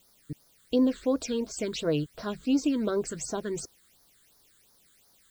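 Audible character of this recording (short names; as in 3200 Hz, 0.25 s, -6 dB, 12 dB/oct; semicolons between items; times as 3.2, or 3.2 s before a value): a quantiser's noise floor 10-bit, dither triangular; phasing stages 8, 2.8 Hz, lowest notch 720–2800 Hz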